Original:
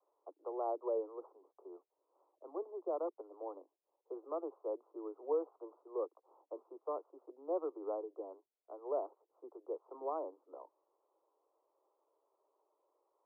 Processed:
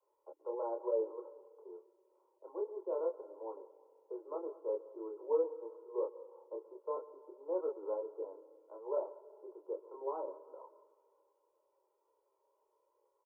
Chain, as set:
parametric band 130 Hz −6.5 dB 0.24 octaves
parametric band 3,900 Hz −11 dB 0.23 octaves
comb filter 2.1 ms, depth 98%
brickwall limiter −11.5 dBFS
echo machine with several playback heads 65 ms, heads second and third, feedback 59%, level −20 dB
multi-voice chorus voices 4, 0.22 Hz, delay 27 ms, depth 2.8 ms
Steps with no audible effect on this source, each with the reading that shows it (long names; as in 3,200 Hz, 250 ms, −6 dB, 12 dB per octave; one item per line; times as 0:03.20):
parametric band 130 Hz: nothing at its input below 250 Hz
parametric band 3,900 Hz: nothing at its input above 1,400 Hz
brickwall limiter −11.5 dBFS: peak of its input −20.0 dBFS